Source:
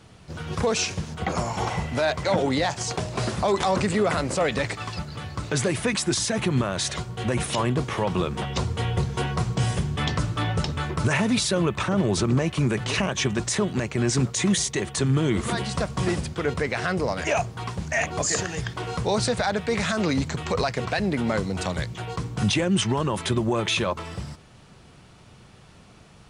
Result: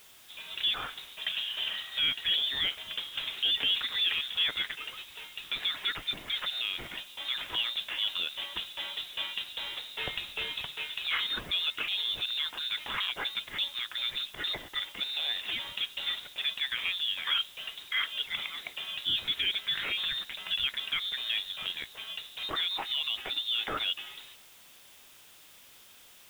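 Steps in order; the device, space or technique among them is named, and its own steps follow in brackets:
scrambled radio voice (band-pass filter 360–2,700 Hz; voice inversion scrambler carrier 3,900 Hz; white noise bed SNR 22 dB)
0:09.99–0:10.62: low-shelf EQ 220 Hz +11 dB
level −4.5 dB

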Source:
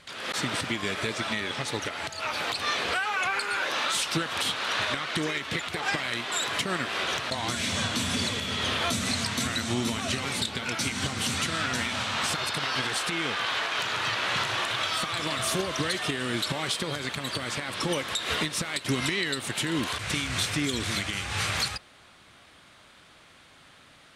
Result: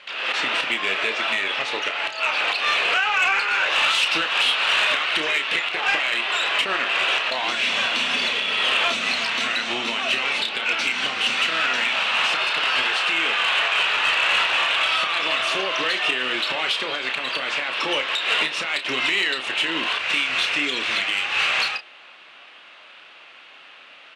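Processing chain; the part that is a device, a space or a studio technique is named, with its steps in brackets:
0:03.72–0:05.56: high-shelf EQ 4,000 Hz +4.5 dB
intercom (band-pass filter 500–3,600 Hz; parametric band 2,700 Hz +10.5 dB 0.38 octaves; soft clipping −18.5 dBFS, distortion −20 dB; double-tracking delay 31 ms −8.5 dB)
level +6.5 dB

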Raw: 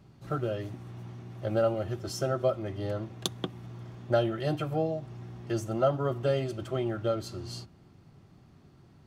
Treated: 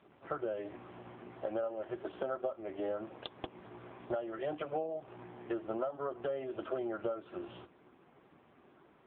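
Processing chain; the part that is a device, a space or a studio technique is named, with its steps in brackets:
voicemail (band-pass filter 410–2,600 Hz; downward compressor 10 to 1, threshold −39 dBFS, peak gain reduction 18 dB; level +7 dB; AMR narrowband 5.15 kbit/s 8,000 Hz)

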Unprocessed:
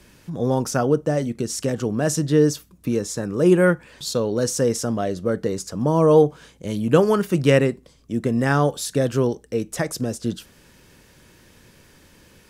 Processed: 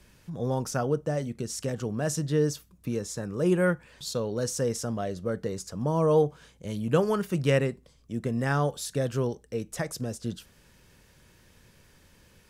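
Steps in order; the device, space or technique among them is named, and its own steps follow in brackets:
low shelf boost with a cut just above (low-shelf EQ 110 Hz +4.5 dB; parametric band 300 Hz −4.5 dB 0.73 octaves)
level −7 dB

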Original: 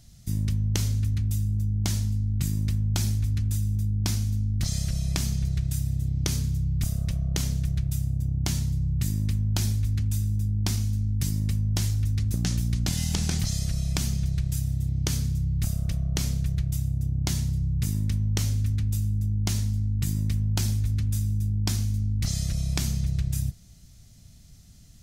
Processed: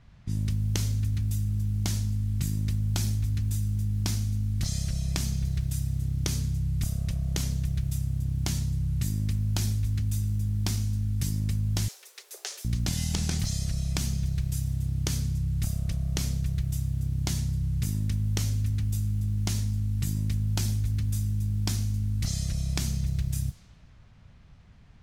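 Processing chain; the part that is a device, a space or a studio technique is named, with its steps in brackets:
cassette deck with a dynamic noise filter (white noise bed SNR 31 dB; low-pass that shuts in the quiet parts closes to 2,000 Hz, open at −21.5 dBFS)
0:11.88–0:12.65: Butterworth high-pass 390 Hz 96 dB per octave
level −2 dB

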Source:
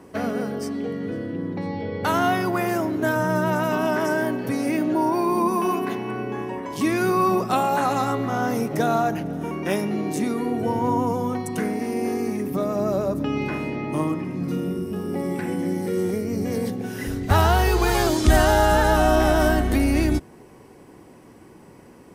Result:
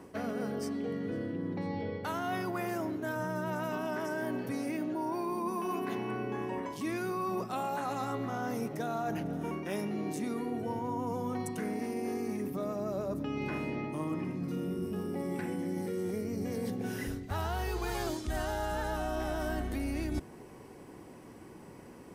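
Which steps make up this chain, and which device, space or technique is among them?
compression on the reversed sound (reversed playback; downward compressor 6 to 1, threshold −29 dBFS, peak gain reduction 18 dB; reversed playback)
level −3 dB

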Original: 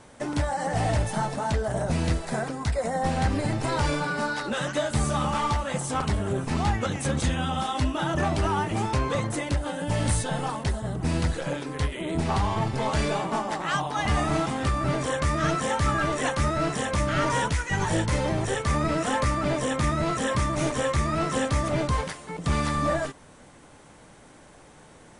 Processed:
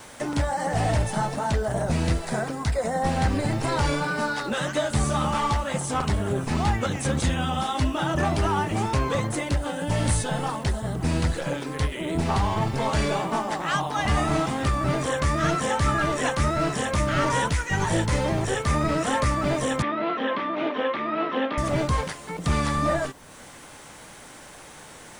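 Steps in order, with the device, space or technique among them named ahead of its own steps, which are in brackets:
noise-reduction cassette on a plain deck (one half of a high-frequency compander encoder only; tape wow and flutter 28 cents; white noise bed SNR 36 dB)
0:19.82–0:21.58: elliptic band-pass filter 240–3,300 Hz, stop band 40 dB
level +1.5 dB

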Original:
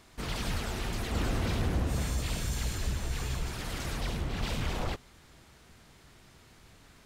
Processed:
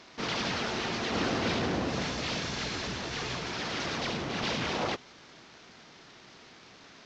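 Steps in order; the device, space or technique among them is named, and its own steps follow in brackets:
early wireless headset (high-pass filter 210 Hz 12 dB per octave; variable-slope delta modulation 32 kbit/s)
level +6 dB

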